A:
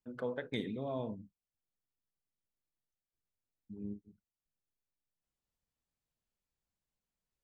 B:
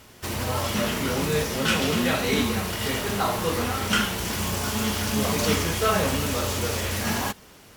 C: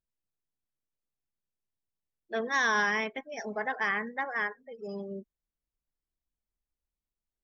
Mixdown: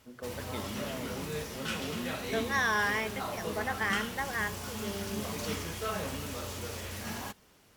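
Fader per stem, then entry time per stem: -3.5 dB, -12.5 dB, -2.0 dB; 0.00 s, 0.00 s, 0.00 s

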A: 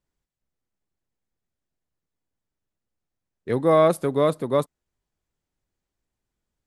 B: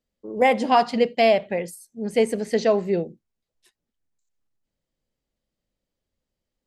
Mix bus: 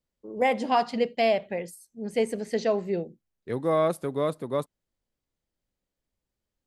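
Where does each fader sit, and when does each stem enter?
-6.5 dB, -5.5 dB; 0.00 s, 0.00 s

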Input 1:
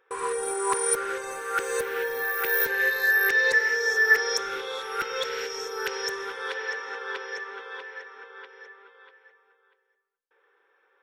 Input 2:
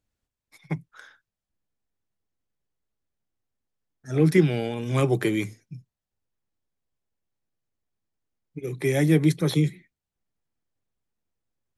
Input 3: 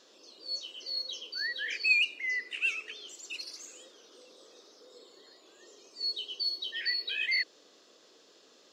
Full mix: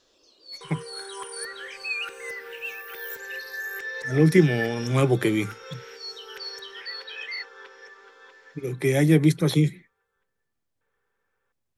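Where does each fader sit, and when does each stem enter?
-12.0 dB, +1.5 dB, -5.0 dB; 0.50 s, 0.00 s, 0.00 s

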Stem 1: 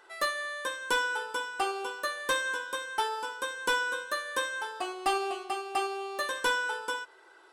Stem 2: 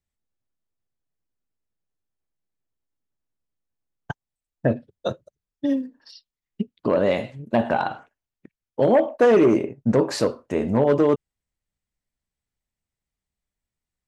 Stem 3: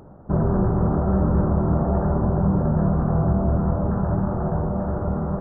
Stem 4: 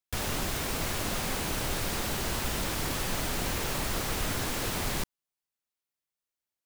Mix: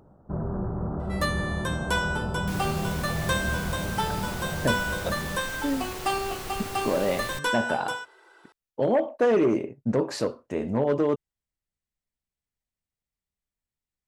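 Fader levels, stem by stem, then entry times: +1.0 dB, -5.5 dB, -10.0 dB, -6.0 dB; 1.00 s, 0.00 s, 0.00 s, 2.35 s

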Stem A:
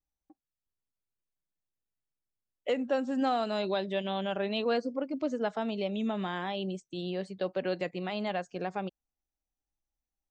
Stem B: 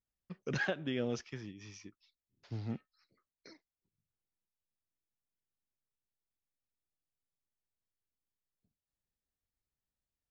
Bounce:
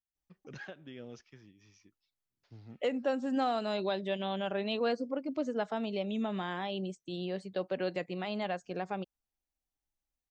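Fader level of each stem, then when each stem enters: -2.0 dB, -11.5 dB; 0.15 s, 0.00 s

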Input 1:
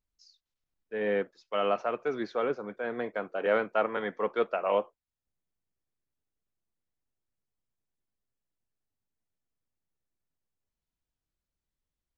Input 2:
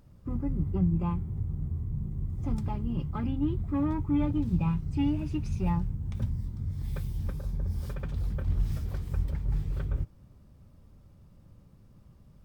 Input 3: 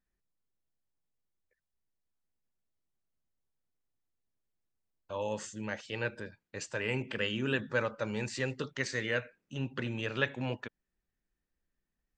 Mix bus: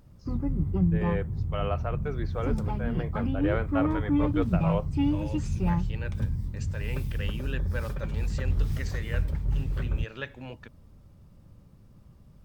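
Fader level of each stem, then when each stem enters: -4.0 dB, +2.0 dB, -6.0 dB; 0.00 s, 0.00 s, 0.00 s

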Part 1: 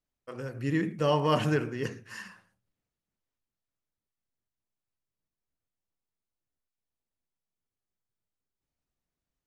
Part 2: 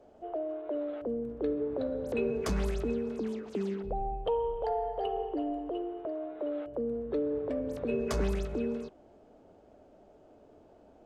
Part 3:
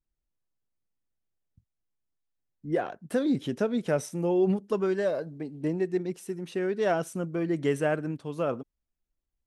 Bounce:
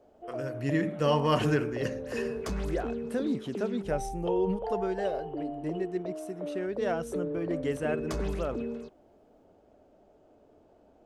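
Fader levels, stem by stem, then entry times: 0.0 dB, -2.5 dB, -5.0 dB; 0.00 s, 0.00 s, 0.00 s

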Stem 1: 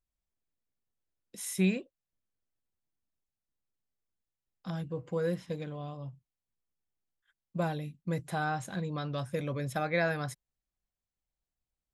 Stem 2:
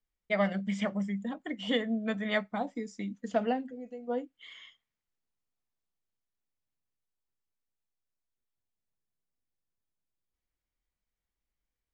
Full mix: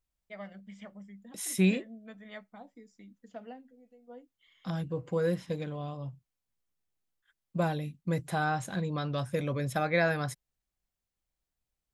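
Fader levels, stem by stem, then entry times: +2.5 dB, -16.0 dB; 0.00 s, 0.00 s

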